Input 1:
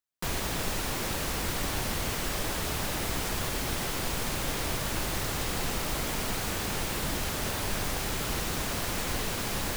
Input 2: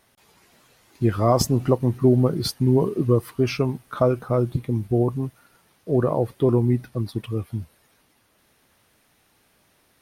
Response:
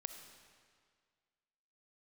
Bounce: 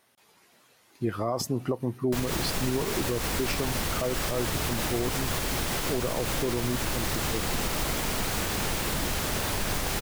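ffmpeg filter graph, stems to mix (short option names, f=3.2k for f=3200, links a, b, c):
-filter_complex "[0:a]adelay=1900,volume=3dB[a];[1:a]highpass=f=230:p=1,volume=-3dB[b];[a][b]amix=inputs=2:normalize=0,alimiter=limit=-18dB:level=0:latency=1:release=70"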